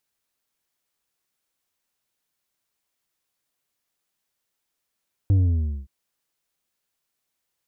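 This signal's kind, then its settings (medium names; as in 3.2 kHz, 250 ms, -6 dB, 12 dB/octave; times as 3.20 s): sub drop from 100 Hz, over 0.57 s, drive 6 dB, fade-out 0.55 s, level -15 dB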